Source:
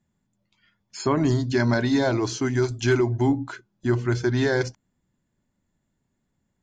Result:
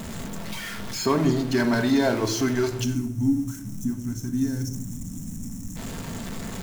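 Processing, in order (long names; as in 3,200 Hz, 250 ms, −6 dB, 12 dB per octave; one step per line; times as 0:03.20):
converter with a step at zero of −27 dBFS
gain on a spectral selection 0:02.84–0:05.77, 320–5,300 Hz −20 dB
rectangular room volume 2,000 cubic metres, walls furnished, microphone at 1.6 metres
level −2.5 dB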